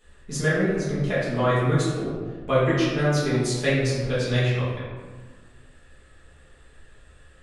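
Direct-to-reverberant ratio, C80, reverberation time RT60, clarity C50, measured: −10.5 dB, 2.0 dB, 1.5 s, −1.0 dB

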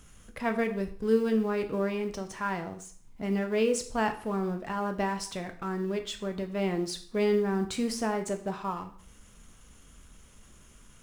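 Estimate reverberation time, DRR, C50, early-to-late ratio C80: 0.50 s, 6.0 dB, 12.0 dB, 16.0 dB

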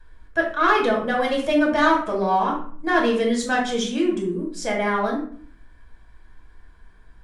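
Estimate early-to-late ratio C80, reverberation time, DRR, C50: 10.5 dB, 0.50 s, −2.0 dB, 5.5 dB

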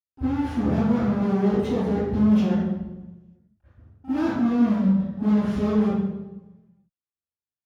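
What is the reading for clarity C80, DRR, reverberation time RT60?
−2.0 dB, −20.0 dB, 1.1 s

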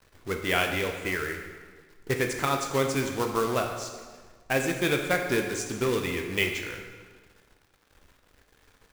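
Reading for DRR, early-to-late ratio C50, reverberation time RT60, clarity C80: 3.0 dB, 5.5 dB, 1.5 s, 7.0 dB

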